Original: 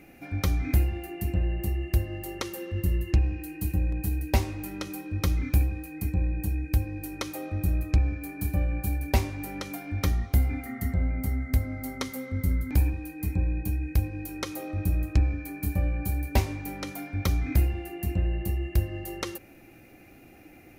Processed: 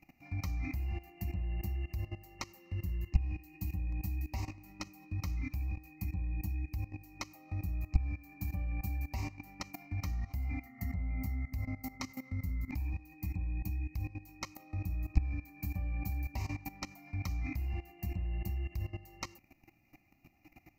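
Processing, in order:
output level in coarse steps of 17 dB
phaser with its sweep stopped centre 2,300 Hz, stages 8

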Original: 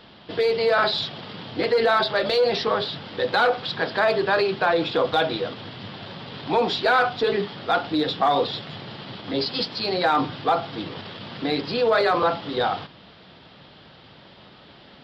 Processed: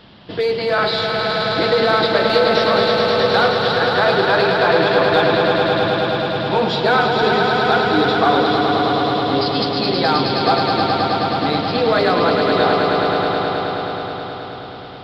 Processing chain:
bass and treble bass +5 dB, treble 0 dB
on a send: echo that builds up and dies away 106 ms, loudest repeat 5, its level −6 dB
on the sum: level +2 dB

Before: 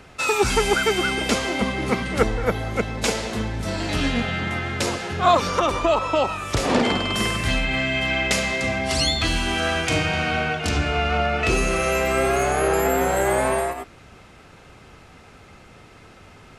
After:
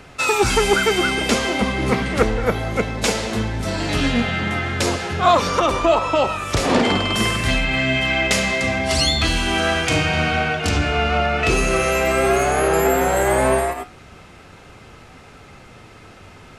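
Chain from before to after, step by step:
in parallel at −9 dB: soft clipping −18 dBFS, distortion −12 dB
on the sum: flanger 0.26 Hz, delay 6.7 ms, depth 8.8 ms, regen +79%
0:01.93–0:02.40: highs frequency-modulated by the lows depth 0.15 ms
level +5.5 dB

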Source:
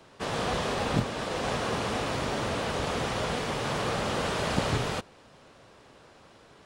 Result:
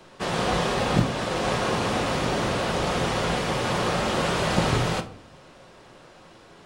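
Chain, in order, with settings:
rectangular room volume 500 cubic metres, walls furnished, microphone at 0.95 metres
level +4 dB

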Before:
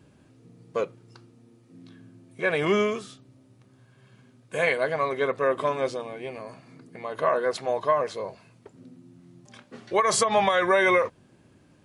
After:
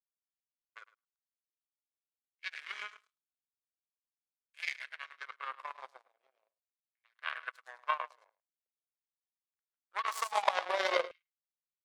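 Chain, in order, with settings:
repeating echo 106 ms, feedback 33%, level −6 dB
power curve on the samples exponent 3
auto-filter high-pass saw down 0.45 Hz 510–2,500 Hz
level −3 dB

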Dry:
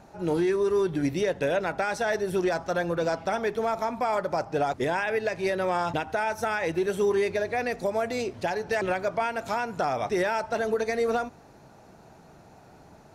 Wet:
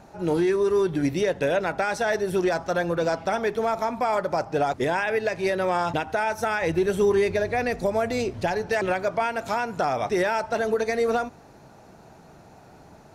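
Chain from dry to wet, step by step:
0:06.62–0:08.66: low-shelf EQ 120 Hz +11.5 dB
level +2.5 dB

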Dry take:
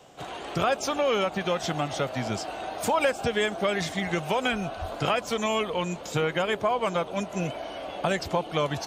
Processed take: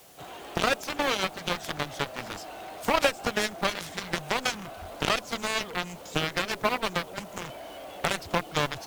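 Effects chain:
background noise white −51 dBFS
harmonic generator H 5 −9 dB, 7 −6 dB, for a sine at −9.5 dBFS
level −1.5 dB

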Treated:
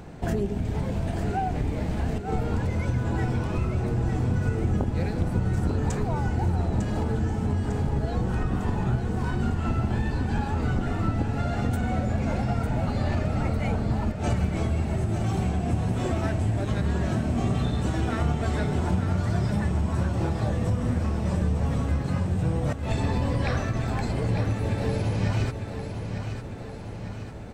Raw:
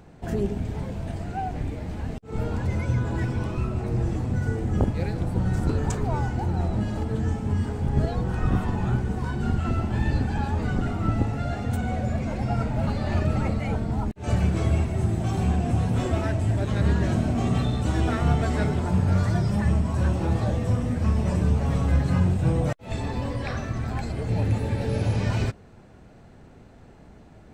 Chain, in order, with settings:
downward compressor 6 to 1, threshold −30 dBFS, peak gain reduction 13.5 dB
on a send: repeating echo 901 ms, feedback 56%, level −8 dB
on the sum: level +7 dB

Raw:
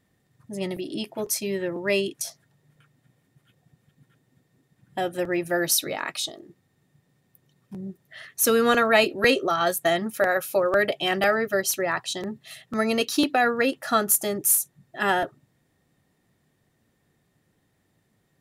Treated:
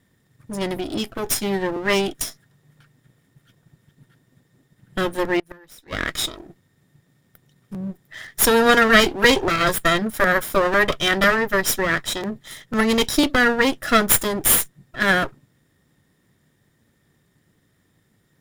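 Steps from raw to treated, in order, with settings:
lower of the sound and its delayed copy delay 0.56 ms
0:05.39–0:05.93: gate with flip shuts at −20 dBFS, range −29 dB
level +6 dB

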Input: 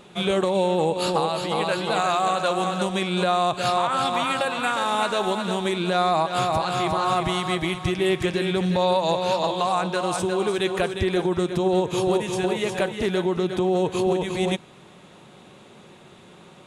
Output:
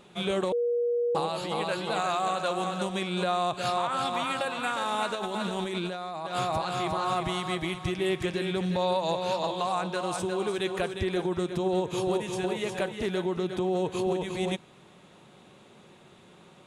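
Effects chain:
0:00.52–0:01.15: beep over 478 Hz −17.5 dBFS
0:05.15–0:06.27: compressor whose output falls as the input rises −27 dBFS, ratio −1
level −6 dB

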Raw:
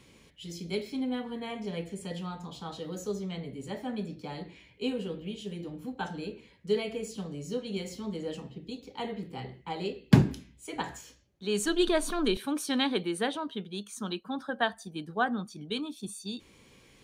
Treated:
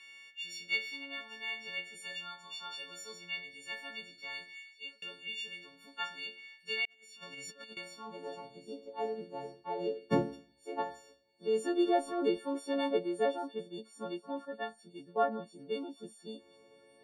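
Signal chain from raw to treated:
every partial snapped to a pitch grid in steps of 4 semitones
band-pass filter sweep 2,300 Hz → 530 Hz, 0:07.31–0:08.74
0:04.40–0:05.02: fade out
delay with a high-pass on its return 791 ms, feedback 64%, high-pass 3,800 Hz, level −17 dB
0:06.85–0:07.77: compressor whose output falls as the input rises −55 dBFS, ratio −0.5
0:14.45–0:15.16: parametric band 710 Hz −11 dB 2.1 octaves
level +4.5 dB

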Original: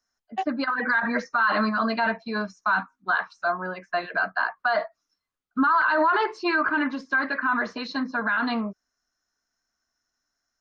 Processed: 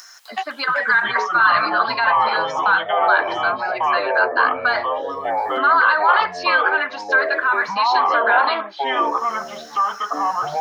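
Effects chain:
high-pass filter 1,100 Hz 12 dB per octave
upward compression, threshold −29 dBFS
delay with pitch and tempo change per echo 255 ms, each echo −5 semitones, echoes 3
level +8 dB

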